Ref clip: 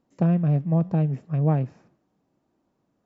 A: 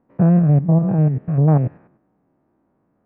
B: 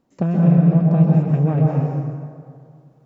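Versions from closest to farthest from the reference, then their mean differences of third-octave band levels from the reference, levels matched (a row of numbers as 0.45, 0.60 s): A, B; 3.0, 6.0 dB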